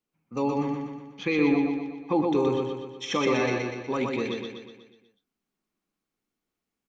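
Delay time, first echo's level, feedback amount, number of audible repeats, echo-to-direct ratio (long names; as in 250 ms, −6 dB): 122 ms, −3.0 dB, 54%, 6, −1.5 dB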